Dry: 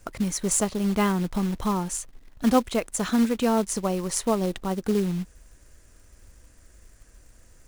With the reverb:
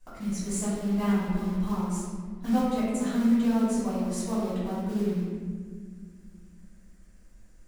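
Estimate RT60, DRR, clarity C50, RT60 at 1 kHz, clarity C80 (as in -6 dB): 1.8 s, -12.5 dB, -2.5 dB, 1.4 s, 0.5 dB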